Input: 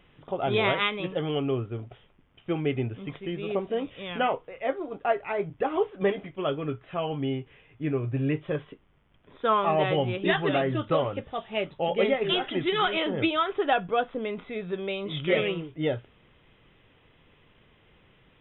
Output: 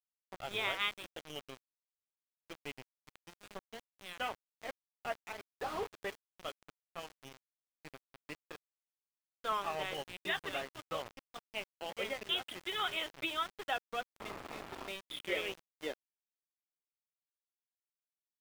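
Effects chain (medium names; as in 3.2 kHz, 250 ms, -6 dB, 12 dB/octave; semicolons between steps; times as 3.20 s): high-pass sweep 97 Hz -> 330 Hz, 12.90–15.70 s; differentiator; 5.51–5.97 s: overdrive pedal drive 31 dB, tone 1.2 kHz, clips at -34.5 dBFS; 14.19–14.89 s: painted sound noise 250–1400 Hz -49 dBFS; small samples zeroed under -43.5 dBFS; treble shelf 2.4 kHz -10 dB; trim +7 dB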